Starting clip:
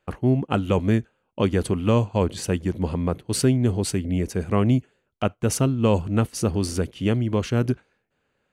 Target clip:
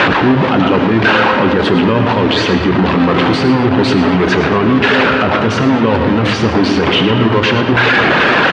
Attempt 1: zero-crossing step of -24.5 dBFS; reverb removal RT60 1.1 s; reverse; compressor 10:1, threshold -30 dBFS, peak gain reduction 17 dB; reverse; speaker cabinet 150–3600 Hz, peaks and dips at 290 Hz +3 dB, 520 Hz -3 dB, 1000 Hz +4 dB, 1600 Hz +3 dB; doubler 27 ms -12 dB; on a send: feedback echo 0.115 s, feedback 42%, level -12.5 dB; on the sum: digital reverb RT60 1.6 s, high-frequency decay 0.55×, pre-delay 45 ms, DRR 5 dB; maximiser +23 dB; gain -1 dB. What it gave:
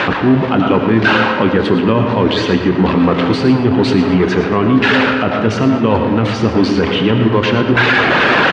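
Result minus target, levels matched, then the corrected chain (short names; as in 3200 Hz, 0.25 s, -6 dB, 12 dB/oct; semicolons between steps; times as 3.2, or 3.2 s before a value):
zero-crossing step: distortion -7 dB
zero-crossing step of -13.5 dBFS; reverb removal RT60 1.1 s; reverse; compressor 10:1, threshold -30 dBFS, peak gain reduction 18.5 dB; reverse; speaker cabinet 150–3600 Hz, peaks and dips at 290 Hz +3 dB, 520 Hz -3 dB, 1000 Hz +4 dB, 1600 Hz +3 dB; doubler 27 ms -12 dB; on a send: feedback echo 0.115 s, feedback 42%, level -12.5 dB; on the sum: digital reverb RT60 1.6 s, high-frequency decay 0.55×, pre-delay 45 ms, DRR 5 dB; maximiser +23 dB; gain -1 dB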